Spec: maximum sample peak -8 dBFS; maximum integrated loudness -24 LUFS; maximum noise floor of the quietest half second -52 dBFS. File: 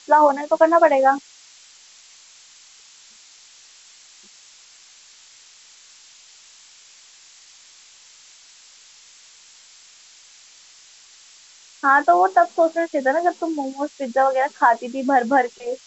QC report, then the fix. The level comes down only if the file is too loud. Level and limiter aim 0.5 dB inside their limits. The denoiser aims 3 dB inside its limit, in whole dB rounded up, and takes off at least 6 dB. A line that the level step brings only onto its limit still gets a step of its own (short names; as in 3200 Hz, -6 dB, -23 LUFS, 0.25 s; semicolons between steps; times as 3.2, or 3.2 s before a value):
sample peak -3.0 dBFS: fail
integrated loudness -18.5 LUFS: fail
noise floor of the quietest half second -49 dBFS: fail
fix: gain -6 dB